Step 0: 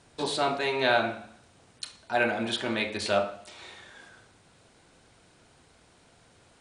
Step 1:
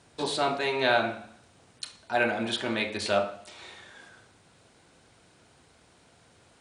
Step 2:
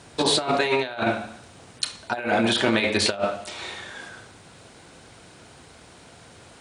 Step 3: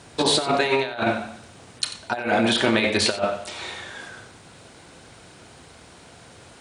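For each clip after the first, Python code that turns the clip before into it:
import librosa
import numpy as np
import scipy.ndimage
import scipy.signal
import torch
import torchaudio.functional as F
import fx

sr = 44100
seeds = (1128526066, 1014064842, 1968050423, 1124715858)

y1 = scipy.signal.sosfilt(scipy.signal.butter(2, 51.0, 'highpass', fs=sr, output='sos'), x)
y2 = fx.over_compress(y1, sr, threshold_db=-30.0, ratio=-0.5)
y2 = y2 * librosa.db_to_amplitude(8.0)
y3 = y2 + 10.0 ** (-13.5 / 20.0) * np.pad(y2, (int(91 * sr / 1000.0), 0))[:len(y2)]
y3 = y3 * librosa.db_to_amplitude(1.0)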